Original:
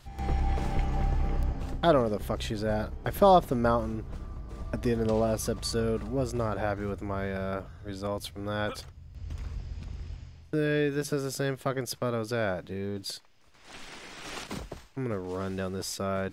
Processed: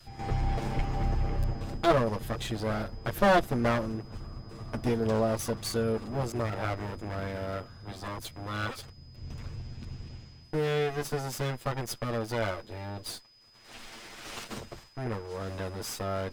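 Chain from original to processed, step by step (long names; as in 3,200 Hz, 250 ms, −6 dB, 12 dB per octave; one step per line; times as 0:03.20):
lower of the sound and its delayed copy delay 8.8 ms
steady tone 5,000 Hz −58 dBFS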